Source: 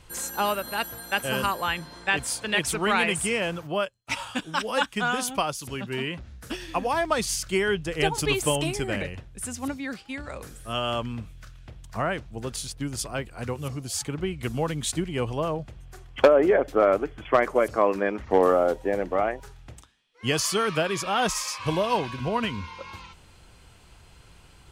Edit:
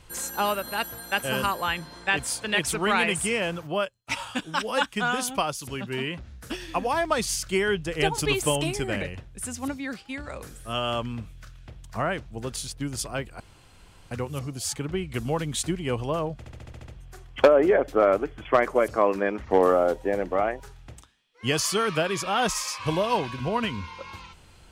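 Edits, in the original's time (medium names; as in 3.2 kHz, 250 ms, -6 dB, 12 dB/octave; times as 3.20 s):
13.40 s: insert room tone 0.71 s
15.67 s: stutter 0.07 s, 8 plays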